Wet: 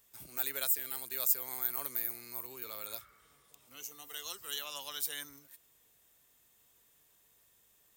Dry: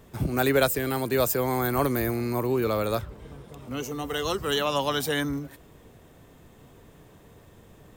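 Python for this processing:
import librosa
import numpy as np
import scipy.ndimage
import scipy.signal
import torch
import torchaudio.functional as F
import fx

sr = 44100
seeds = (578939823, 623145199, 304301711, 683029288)

y = fx.spec_repair(x, sr, seeds[0], start_s=2.9, length_s=0.6, low_hz=1100.0, high_hz=2300.0, source='both')
y = fx.add_hum(y, sr, base_hz=50, snr_db=28)
y = scipy.signal.lfilter([1.0, -0.97], [1.0], y)
y = F.gain(torch.from_numpy(y), -3.5).numpy()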